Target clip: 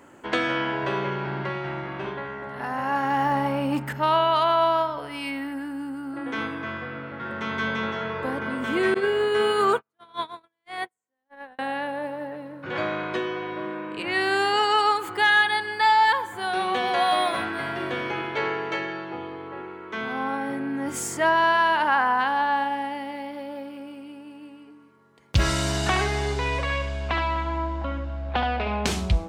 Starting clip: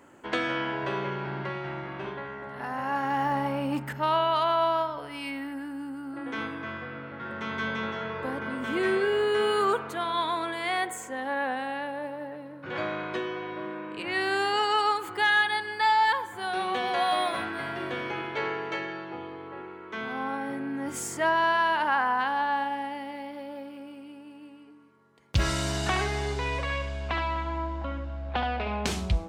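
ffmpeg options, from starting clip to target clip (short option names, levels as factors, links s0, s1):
-filter_complex "[0:a]asettb=1/sr,asplit=3[s0][s1][s2];[s0]atrim=end=8.944[s3];[s1]atrim=start=8.94:end=11.59,asetpts=PTS-STARTPTS,afade=t=in:d=0.004:c=qsin,afade=t=out:st=2.646:d=0.004:c=qsin,agate=range=0.00224:threshold=0.0562:ratio=16:detection=peak[s4];[s2]atrim=start=11.586[s5];[s3][s4]acrossfade=d=0.004:c1=hsin:c2=qsin[s6];[s6][s5]acrossfade=d=0.004:c1=qsin:c2=hsin,volume=1.58"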